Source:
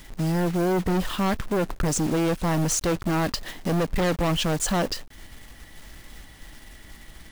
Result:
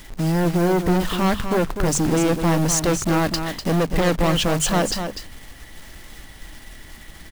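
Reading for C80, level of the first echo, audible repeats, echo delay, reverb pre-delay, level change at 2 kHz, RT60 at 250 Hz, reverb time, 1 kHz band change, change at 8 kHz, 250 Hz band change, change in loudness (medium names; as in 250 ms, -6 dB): no reverb, -8.0 dB, 1, 248 ms, no reverb, +4.5 dB, no reverb, no reverb, +4.5 dB, +4.5 dB, +4.5 dB, +4.5 dB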